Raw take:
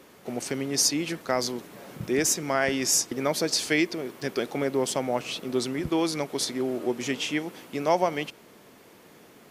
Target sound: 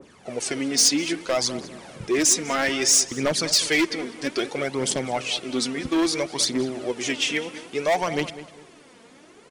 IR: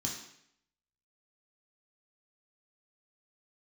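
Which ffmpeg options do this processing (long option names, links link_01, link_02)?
-filter_complex "[0:a]aphaser=in_gain=1:out_gain=1:delay=4.5:decay=0.6:speed=0.61:type=triangular,aresample=22050,aresample=44100,asoftclip=type=hard:threshold=-17.5dB,asplit=2[link_01][link_02];[link_02]adelay=200,lowpass=frequency=2400:poles=1,volume=-13.5dB,asplit=2[link_03][link_04];[link_04]adelay=200,lowpass=frequency=2400:poles=1,volume=0.32,asplit=2[link_05][link_06];[link_06]adelay=200,lowpass=frequency=2400:poles=1,volume=0.32[link_07];[link_01][link_03][link_05][link_07]amix=inputs=4:normalize=0,adynamicequalizer=threshold=0.01:dfrequency=1600:dqfactor=0.7:tfrequency=1600:tqfactor=0.7:attack=5:release=100:ratio=0.375:range=2.5:mode=boostabove:tftype=highshelf"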